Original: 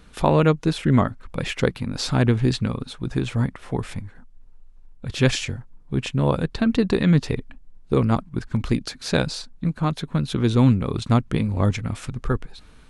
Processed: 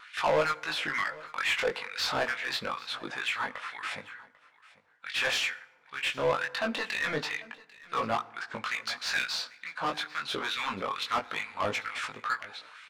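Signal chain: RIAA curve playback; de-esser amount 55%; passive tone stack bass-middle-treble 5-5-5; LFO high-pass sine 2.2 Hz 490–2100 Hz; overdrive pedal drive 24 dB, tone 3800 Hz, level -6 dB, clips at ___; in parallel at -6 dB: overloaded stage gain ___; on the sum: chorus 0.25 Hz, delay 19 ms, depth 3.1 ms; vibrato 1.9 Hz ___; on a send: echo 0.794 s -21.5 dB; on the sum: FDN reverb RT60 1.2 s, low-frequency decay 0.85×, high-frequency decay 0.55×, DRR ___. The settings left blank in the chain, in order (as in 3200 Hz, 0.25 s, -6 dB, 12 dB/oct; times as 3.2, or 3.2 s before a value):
-15.5 dBFS, 32 dB, 17 cents, 17 dB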